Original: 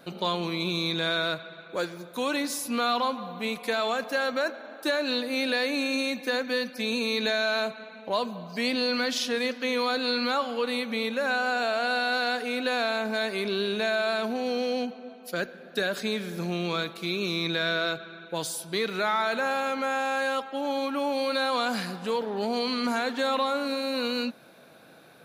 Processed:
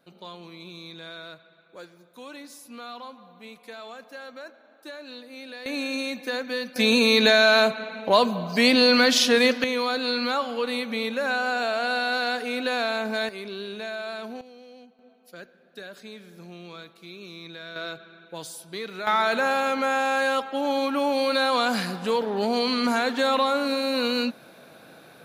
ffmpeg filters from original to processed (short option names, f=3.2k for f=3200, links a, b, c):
-af "asetnsamples=n=441:p=0,asendcmd='5.66 volume volume -1.5dB;6.76 volume volume 9dB;9.64 volume volume 1dB;13.29 volume volume -7dB;14.41 volume volume -19.5dB;14.99 volume volume -13dB;17.76 volume volume -6dB;19.07 volume volume 4dB',volume=-13.5dB"